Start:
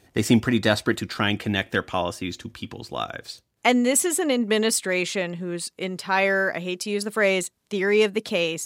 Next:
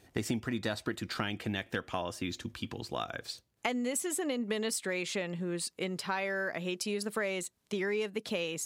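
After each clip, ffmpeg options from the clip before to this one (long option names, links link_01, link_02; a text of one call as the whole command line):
ffmpeg -i in.wav -af "acompressor=threshold=-27dB:ratio=6,volume=-3.5dB" out.wav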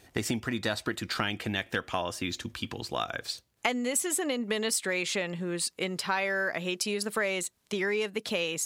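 ffmpeg -i in.wav -af "equalizer=frequency=180:width=0.3:gain=-4.5,volume=6dB" out.wav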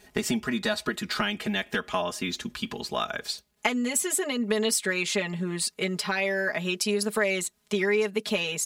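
ffmpeg -i in.wav -af "aecho=1:1:4.8:0.98" out.wav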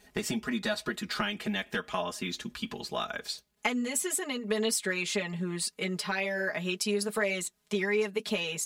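ffmpeg -i in.wav -af "flanger=delay=3.8:depth=2.9:regen=-49:speed=1.9:shape=sinusoidal" out.wav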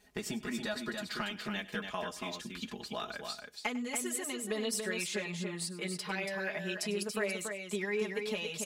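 ffmpeg -i in.wav -af "aecho=1:1:99|283:0.133|0.531,volume=-6dB" out.wav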